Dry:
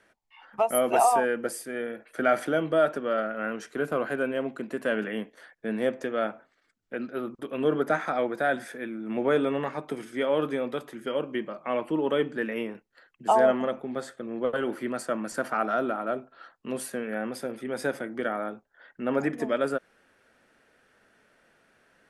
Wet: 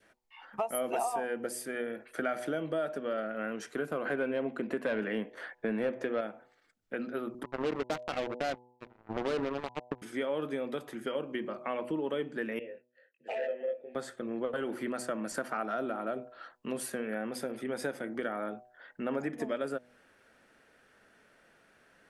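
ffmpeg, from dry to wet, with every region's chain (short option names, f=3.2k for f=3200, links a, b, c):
-filter_complex "[0:a]asettb=1/sr,asplit=3[a][b][c];[a]atrim=end=4.054[d];[b]atrim=start=4.05:end=6.21,asetpts=PTS-STARTPTS,afade=t=in:d=0.004:c=qsin,afade=t=out:st=2.156:d=0.004:c=qsin,aeval=exprs='0.211*sin(PI/2*1.58*val(0)/0.211)':c=same,bass=f=250:g=-3,treble=f=4k:g=-11[e];[c]atrim=start=6.206[f];[d][e]acrossfade=d=0.004:c1=hsin:c2=qsin[g];[g][f]acrossfade=d=0.004:c1=qsin:c2=hsin,asettb=1/sr,asplit=3[h][i][j];[h]atrim=end=7.434[k];[i]atrim=start=7.43:end=10.02,asetpts=PTS-STARTPTS,afade=t=in:d=0.004:c=qsin,afade=t=out:st=2.586:d=0.004:c=qsin,aeval=exprs='val(0)+0.5*0.0178*sgn(val(0))':c=same,lowpass=f=1.3k:w=0.5412,lowpass=f=1.3k:w=1.3066,acrusher=bits=3:mix=0:aa=0.5[l];[j]atrim=start=10.016[m];[k][l]acrossfade=d=0.004:c1=hsin:c2=qsin[n];[n][m]acrossfade=d=0.004:c1=qsin:c2=hsin,asettb=1/sr,asplit=3[o][p][q];[o]atrim=end=12.594[r];[p]atrim=start=12.59:end=13.95,asetpts=PTS-STARTPTS,afade=t=in:d=0.004:c=qsin,afade=t=out:st=1.356:d=0.004:c=qsin,asplit=2[s][t];[t]adelay=21,volume=-3dB[u];[s][u]amix=inputs=2:normalize=0,atrim=end_sample=59976,aeval=exprs='0.188*(abs(mod(val(0)/0.188+3,4)-2)-1)':c=same,asplit=3[v][w][x];[v]bandpass=f=530:t=q:w=8,volume=0dB[y];[w]bandpass=f=1.84k:t=q:w=8,volume=-6dB[z];[x]bandpass=f=2.48k:t=q:w=8,volume=-9dB[aa];[y][z][aa]amix=inputs=3:normalize=0[ab];[q]atrim=start=13.946[ac];[r][ab]acrossfade=d=0.004:c1=hsin:c2=qsin[ad];[ad][ac]acrossfade=d=0.004:c1=qsin:c2=hsin,bandreject=f=123.2:t=h:w=4,bandreject=f=246.4:t=h:w=4,bandreject=f=369.6:t=h:w=4,bandreject=f=492.8:t=h:w=4,bandreject=f=616:t=h:w=4,bandreject=f=739.2:t=h:w=4,bandreject=f=862.4:t=h:w=4,bandreject=f=985.6:t=h:w=4,adynamicequalizer=threshold=0.01:dfrequency=1200:dqfactor=1.3:tfrequency=1200:tqfactor=1.3:attack=5:release=100:ratio=0.375:range=2:mode=cutabove:tftype=bell,acompressor=threshold=-32dB:ratio=3"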